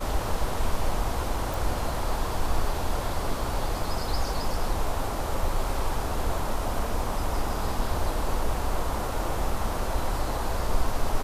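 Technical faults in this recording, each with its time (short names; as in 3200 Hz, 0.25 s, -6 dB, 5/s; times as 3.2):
1.54 pop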